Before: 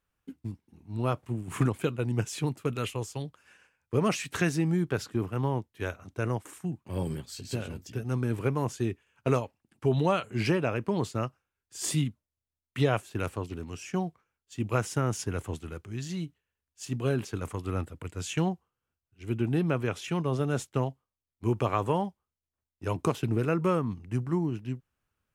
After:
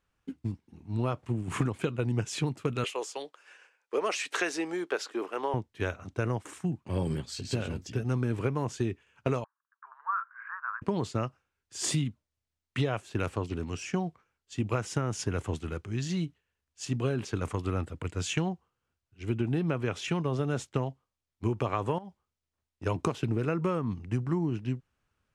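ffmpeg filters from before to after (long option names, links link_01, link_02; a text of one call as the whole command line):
ffmpeg -i in.wav -filter_complex "[0:a]asettb=1/sr,asplit=3[link_01][link_02][link_03];[link_01]atrim=end=2.844[link_04];[link_02]atrim=start=2.84:end=5.54,asetpts=PTS-STARTPTS,afade=type=in:duration=0.004:curve=qsin,afade=type=out:start_time=2.696:duration=0.004:curve=qsin,highpass=frequency=380:width=0.5412,highpass=frequency=380:width=1.3066[link_05];[link_03]atrim=start=5.536[link_06];[link_04][link_05]acrossfade=duration=0.004:curve1=hsin:curve2=qsin[link_07];[link_07][link_06]acrossfade=duration=0.004:curve1=qsin:curve2=hsin,asettb=1/sr,asplit=3[link_08][link_09][link_10];[link_08]atrim=end=9.444[link_11];[link_09]atrim=start=9.44:end=10.82,asetpts=PTS-STARTPTS,afade=type=in:duration=0.004:curve=qsin,afade=type=out:start_time=1.376:duration=0.004:curve=qsin,asuperpass=centerf=1300:order=8:qfactor=2[link_12];[link_10]atrim=start=10.816[link_13];[link_11][link_12]acrossfade=duration=0.004:curve1=hsin:curve2=qsin[link_14];[link_14][link_13]acrossfade=duration=0.004:curve1=qsin:curve2=hsin,asettb=1/sr,asplit=3[link_15][link_16][link_17];[link_15]atrim=end=21.984[link_18];[link_16]atrim=start=21.98:end=22.86,asetpts=PTS-STARTPTS,afade=type=in:duration=0.004:curve=qsin,afade=type=out:start_time=0.876:duration=0.004:curve=qsin,acompressor=threshold=-38dB:ratio=20:attack=3.2:release=140:knee=1:detection=peak[link_19];[link_17]atrim=start=22.856[link_20];[link_18][link_19]acrossfade=duration=0.004:curve1=hsin:curve2=qsin[link_21];[link_21][link_20]acrossfade=duration=0.004:curve1=qsin:curve2=hsin,lowpass=7500,acompressor=threshold=-29dB:ratio=6,volume=4dB" out.wav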